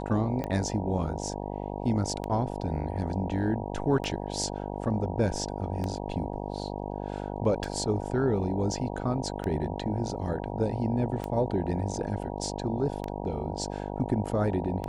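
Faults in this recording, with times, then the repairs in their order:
mains buzz 50 Hz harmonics 19 −35 dBFS
scratch tick 33 1/3 rpm −19 dBFS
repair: click removal
hum removal 50 Hz, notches 19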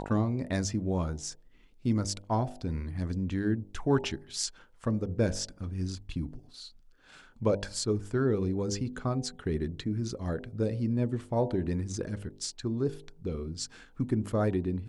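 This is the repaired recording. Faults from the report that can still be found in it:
none of them is left

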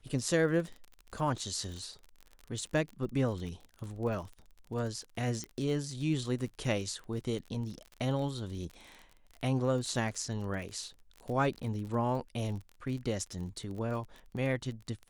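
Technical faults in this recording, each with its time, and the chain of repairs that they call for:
surface crackle 33 per second −39 dBFS
0:05.44: click −25 dBFS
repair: click removal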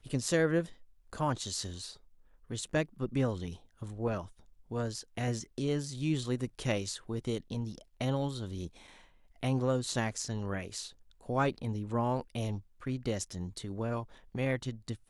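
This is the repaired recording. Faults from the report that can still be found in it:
0:05.44: click

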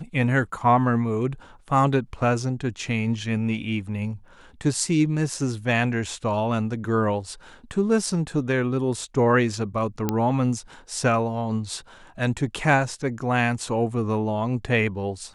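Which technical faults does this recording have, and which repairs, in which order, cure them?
0:10.09: click −9 dBFS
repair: click removal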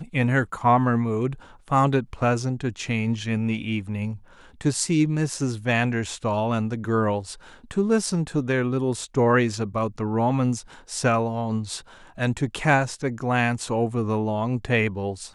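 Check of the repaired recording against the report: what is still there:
0:10.09: click

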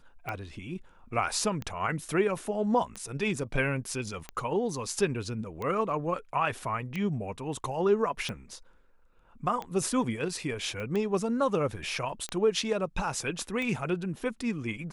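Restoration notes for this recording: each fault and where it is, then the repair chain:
scratch tick 45 rpm −21 dBFS
0:10.80: click −25 dBFS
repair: click removal

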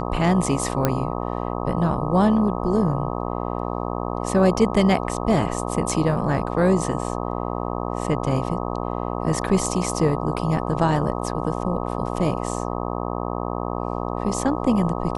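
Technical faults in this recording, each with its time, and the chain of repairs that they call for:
mains buzz 60 Hz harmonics 21 −27 dBFS
0:00.85: click −5 dBFS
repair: click removal
hum removal 60 Hz, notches 21

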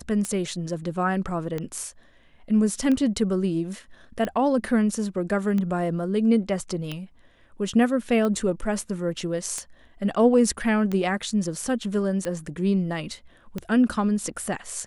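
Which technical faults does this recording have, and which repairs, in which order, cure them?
scratch tick 45 rpm −16 dBFS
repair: click removal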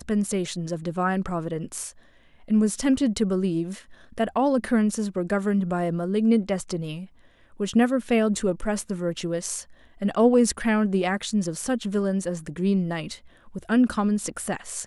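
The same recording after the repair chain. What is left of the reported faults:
none of them is left

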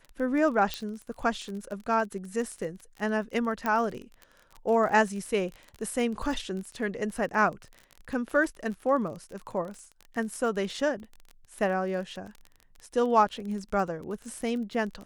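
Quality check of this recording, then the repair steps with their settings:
surface crackle 29 per second −35 dBFS
0:00.74: click −15 dBFS
0:03.66: click −16 dBFS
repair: click removal

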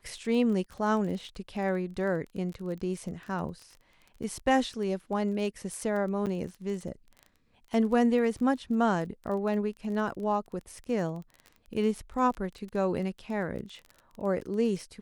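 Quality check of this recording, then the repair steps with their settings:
surface crackle 23 per second −37 dBFS
0:06.26–0:06.27: drop-out 8 ms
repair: click removal
repair the gap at 0:06.26, 8 ms

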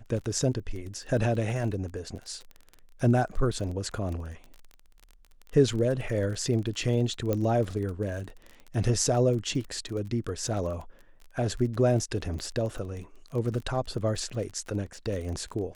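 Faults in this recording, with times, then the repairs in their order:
surface crackle 30 per second −35 dBFS
0:07.33: click −15 dBFS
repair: click removal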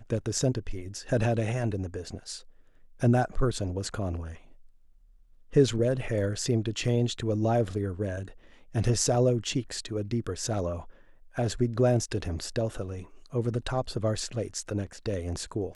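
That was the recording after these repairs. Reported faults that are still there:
0:07.33: click

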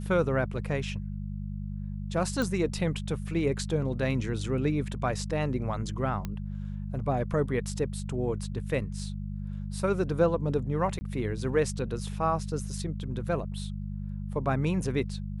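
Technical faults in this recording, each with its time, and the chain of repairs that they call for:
mains hum 50 Hz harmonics 4 −35 dBFS
0:02.42: click −17 dBFS
0:06.25: click −20 dBFS
0:10.99–0:11.01: drop-out 20 ms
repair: click removal
hum removal 50 Hz, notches 4
repair the gap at 0:10.99, 20 ms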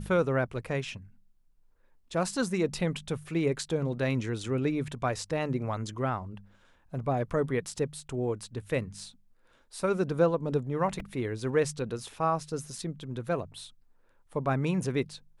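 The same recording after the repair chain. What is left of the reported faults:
none of them is left

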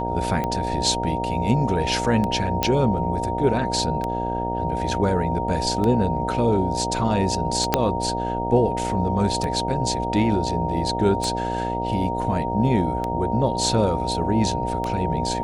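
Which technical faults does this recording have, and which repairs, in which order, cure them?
mains buzz 60 Hz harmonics 13 −28 dBFS
scratch tick 33 1/3 rpm −13 dBFS
whistle 930 Hz −26 dBFS
0:02.63: click −5 dBFS
0:07.74: click −2 dBFS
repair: click removal
hum removal 60 Hz, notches 13
notch filter 930 Hz, Q 30

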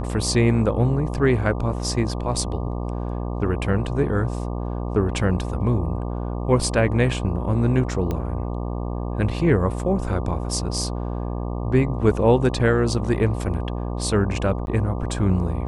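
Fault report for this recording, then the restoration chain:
mains buzz 60 Hz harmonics 20 −27 dBFS
0:08.11: click −14 dBFS
0:14.66–0:14.67: drop-out 11 ms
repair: click removal
hum removal 60 Hz, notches 20
repair the gap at 0:14.66, 11 ms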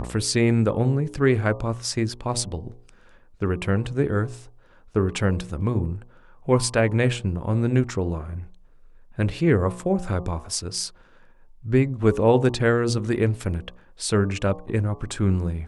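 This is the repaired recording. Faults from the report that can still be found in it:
0:08.11: click

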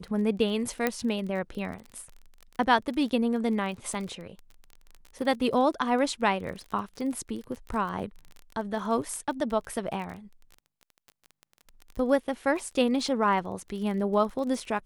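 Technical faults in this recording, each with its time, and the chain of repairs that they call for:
surface crackle 27 per second −35 dBFS
0:00.87: click −11 dBFS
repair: click removal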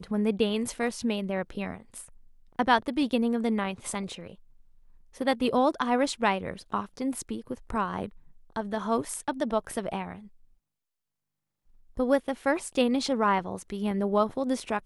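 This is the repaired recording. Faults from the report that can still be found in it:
0:00.87: click

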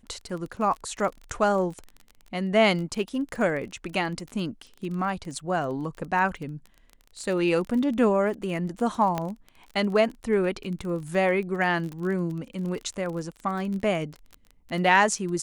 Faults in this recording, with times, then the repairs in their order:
surface crackle 27 per second −33 dBFS
0:09.18: click −14 dBFS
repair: click removal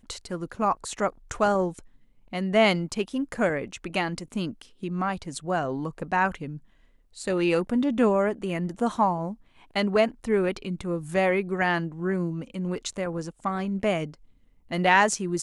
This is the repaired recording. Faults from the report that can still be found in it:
0:09.18: click

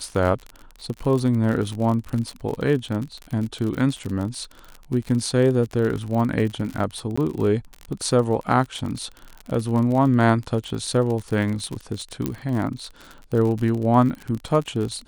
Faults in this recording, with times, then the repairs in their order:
surface crackle 46 per second −27 dBFS
0:07.16–0:07.17: drop-out 15 ms
0:12.26: click −11 dBFS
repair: click removal
repair the gap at 0:07.16, 15 ms

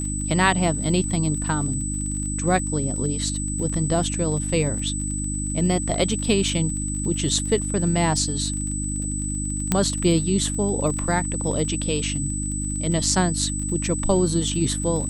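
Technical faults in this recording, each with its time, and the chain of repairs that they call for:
surface crackle 32 per second −31 dBFS
mains hum 50 Hz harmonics 6 −28 dBFS
whistle 8,000 Hz −29 dBFS
0:09.72: click −5 dBFS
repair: click removal
notch filter 8,000 Hz, Q 30
hum removal 50 Hz, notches 6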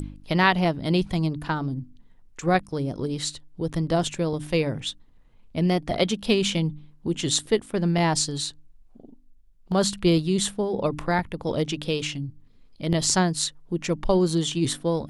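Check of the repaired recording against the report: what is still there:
0:09.72: click

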